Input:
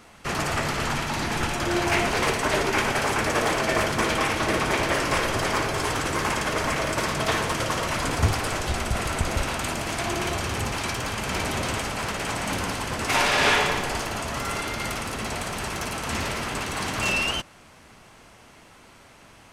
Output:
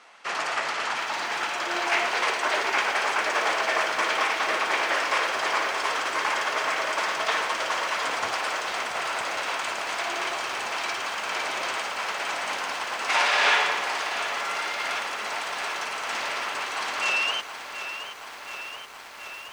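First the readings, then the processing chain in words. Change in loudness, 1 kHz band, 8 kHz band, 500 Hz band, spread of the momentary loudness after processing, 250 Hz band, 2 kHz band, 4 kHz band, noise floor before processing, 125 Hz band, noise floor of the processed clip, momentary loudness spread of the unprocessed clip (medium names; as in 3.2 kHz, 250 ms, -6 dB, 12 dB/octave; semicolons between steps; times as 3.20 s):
-1.0 dB, +0.5 dB, -4.5 dB, -4.5 dB, 7 LU, -14.0 dB, +1.5 dB, 0.0 dB, -51 dBFS, under -25 dB, -40 dBFS, 6 LU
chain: high-pass 720 Hz 12 dB/octave; distance through air 81 m; bit-crushed delay 725 ms, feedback 80%, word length 8-bit, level -10.5 dB; trim +1.5 dB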